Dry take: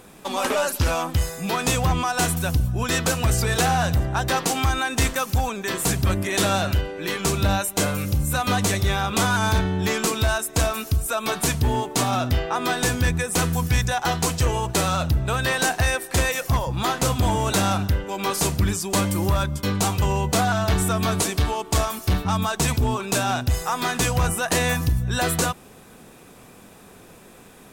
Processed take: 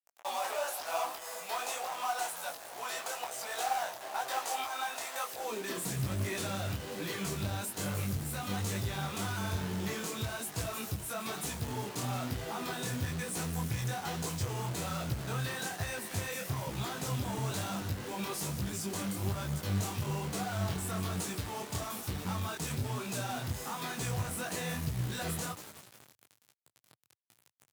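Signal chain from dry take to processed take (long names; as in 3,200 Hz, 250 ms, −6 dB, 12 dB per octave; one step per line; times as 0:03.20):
high-shelf EQ 4,300 Hz +3 dB
downward compressor 4 to 1, threshold −25 dBFS, peak gain reduction 7.5 dB
echo with shifted repeats 183 ms, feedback 64%, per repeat +140 Hz, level −16.5 dB
bit-depth reduction 6 bits, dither none
soft clipping −27.5 dBFS, distortion −11 dB
high-pass filter sweep 710 Hz → 110 Hz, 0:05.24–0:05.99
harmonic generator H 3 −21 dB, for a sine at −17 dBFS
floating-point word with a short mantissa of 2 bits
micro pitch shift up and down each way 39 cents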